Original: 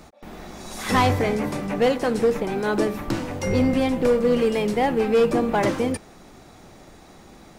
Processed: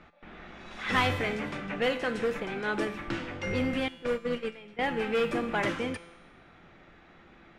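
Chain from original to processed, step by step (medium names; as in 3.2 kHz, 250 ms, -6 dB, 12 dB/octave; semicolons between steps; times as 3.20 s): 3.88–4.79 s: gate -18 dBFS, range -17 dB; level-controlled noise filter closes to 2.7 kHz, open at -15 dBFS; high-order bell 2.1 kHz +8.5 dB; feedback comb 170 Hz, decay 1.1 s, mix 70%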